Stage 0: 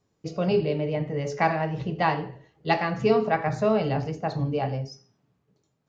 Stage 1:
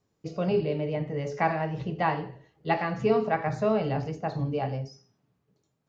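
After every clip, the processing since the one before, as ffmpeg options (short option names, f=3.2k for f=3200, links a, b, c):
-filter_complex "[0:a]acrossover=split=2900[a][b];[b]acompressor=threshold=-46dB:ratio=4:attack=1:release=60[c];[a][c]amix=inputs=2:normalize=0,volume=-2.5dB"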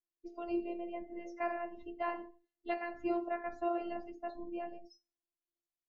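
-af "afftfilt=real='hypot(re,im)*cos(PI*b)':imag='0':win_size=512:overlap=0.75,afftdn=nr=18:nf=-45,volume=-6.5dB"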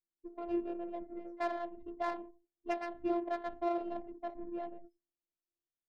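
-af "adynamicsmooth=sensitivity=5:basefreq=660,volume=1dB"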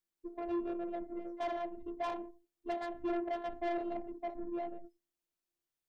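-af "asoftclip=type=tanh:threshold=-34dB,volume=3.5dB"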